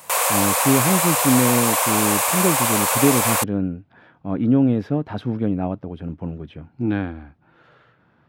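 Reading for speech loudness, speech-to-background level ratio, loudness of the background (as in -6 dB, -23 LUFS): -22.5 LUFS, -4.5 dB, -18.0 LUFS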